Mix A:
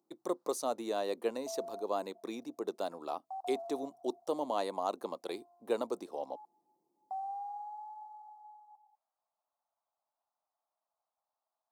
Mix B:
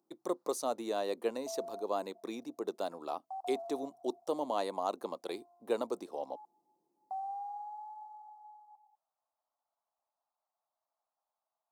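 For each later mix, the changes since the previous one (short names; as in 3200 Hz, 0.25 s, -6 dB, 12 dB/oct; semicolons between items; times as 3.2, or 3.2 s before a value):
none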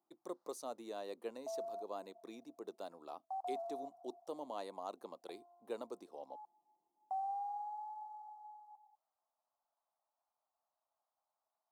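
speech -10.5 dB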